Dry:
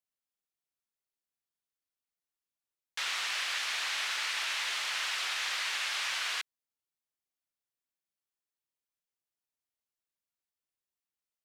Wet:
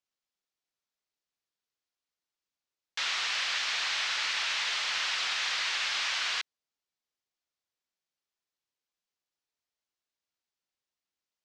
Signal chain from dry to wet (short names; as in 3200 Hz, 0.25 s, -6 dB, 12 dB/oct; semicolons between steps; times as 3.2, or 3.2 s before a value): tone controls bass -4 dB, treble +12 dB; in parallel at -5.5 dB: soft clip -25 dBFS, distortion -16 dB; on the sum: air absorption 170 m